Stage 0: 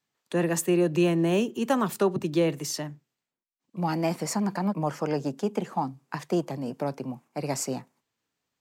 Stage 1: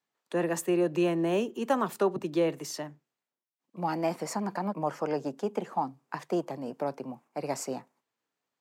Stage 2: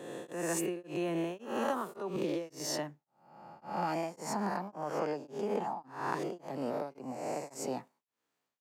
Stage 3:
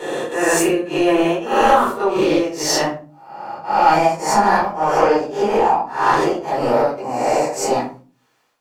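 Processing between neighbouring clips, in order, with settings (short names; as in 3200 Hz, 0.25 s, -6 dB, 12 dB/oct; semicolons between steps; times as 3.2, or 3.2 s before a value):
HPF 930 Hz 6 dB/oct; tilt shelf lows +7 dB, about 1300 Hz
spectral swells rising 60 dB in 0.97 s; compressor, threshold -29 dBFS, peak gain reduction 9.5 dB; beating tremolo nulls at 1.8 Hz
overdrive pedal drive 14 dB, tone 5400 Hz, clips at -18 dBFS; shoebox room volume 190 m³, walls furnished, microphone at 4.4 m; gain +5.5 dB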